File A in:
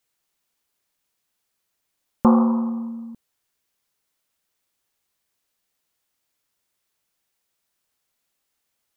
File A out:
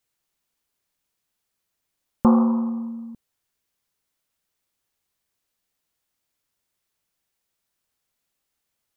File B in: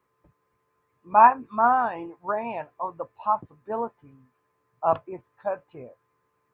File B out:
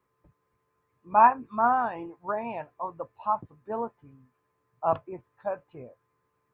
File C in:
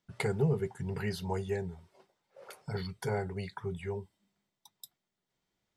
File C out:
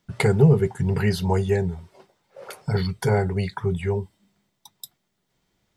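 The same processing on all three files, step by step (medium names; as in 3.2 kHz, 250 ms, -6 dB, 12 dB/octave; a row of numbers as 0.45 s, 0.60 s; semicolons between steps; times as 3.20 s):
bass shelf 210 Hz +5 dB; peak normalisation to -6 dBFS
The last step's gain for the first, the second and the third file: -3.0 dB, -3.5 dB, +10.5 dB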